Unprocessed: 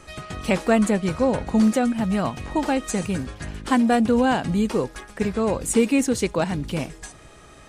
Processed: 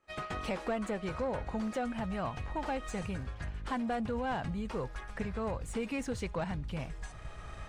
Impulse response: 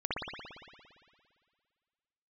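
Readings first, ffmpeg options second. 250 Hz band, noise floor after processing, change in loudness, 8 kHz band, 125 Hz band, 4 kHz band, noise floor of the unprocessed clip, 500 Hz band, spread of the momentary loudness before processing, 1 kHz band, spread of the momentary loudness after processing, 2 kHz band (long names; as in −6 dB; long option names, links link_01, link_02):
−16.5 dB, −47 dBFS, −14.5 dB, −19.5 dB, −10.5 dB, −13.5 dB, −47 dBFS, −13.5 dB, 12 LU, −11.0 dB, 7 LU, −11.5 dB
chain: -filter_complex "[0:a]asubboost=boost=12:cutoff=90,agate=range=-33dB:threshold=-30dB:ratio=3:detection=peak,acompressor=threshold=-35dB:ratio=4,asplit=2[link_01][link_02];[link_02]highpass=frequency=720:poles=1,volume=15dB,asoftclip=type=tanh:threshold=-24dB[link_03];[link_01][link_03]amix=inputs=2:normalize=0,lowpass=frequency=1400:poles=1,volume=-6dB"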